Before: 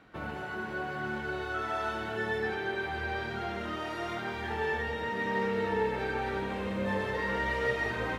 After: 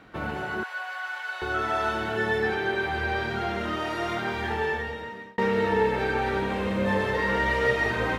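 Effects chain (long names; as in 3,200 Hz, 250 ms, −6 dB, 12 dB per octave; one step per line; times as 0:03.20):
0:00.63–0:01.42: Bessel high-pass filter 1,100 Hz, order 8
0:04.44–0:05.38: fade out
level +6.5 dB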